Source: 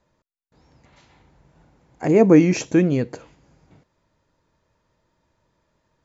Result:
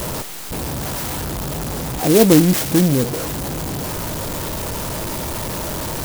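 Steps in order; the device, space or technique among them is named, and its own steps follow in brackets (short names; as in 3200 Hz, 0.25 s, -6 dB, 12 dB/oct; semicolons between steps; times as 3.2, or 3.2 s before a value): 2.32–2.95 comb 1.2 ms, depth 41%; early CD player with a faulty converter (zero-crossing step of -20 dBFS; clock jitter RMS 0.13 ms); gain +1 dB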